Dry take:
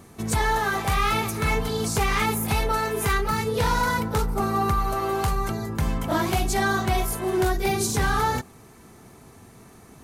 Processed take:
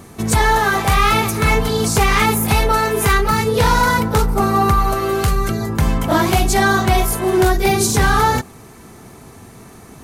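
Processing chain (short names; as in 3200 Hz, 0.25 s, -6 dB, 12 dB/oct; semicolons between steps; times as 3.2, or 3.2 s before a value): 4.94–5.61 bell 890 Hz -15 dB 0.36 oct; gain +8.5 dB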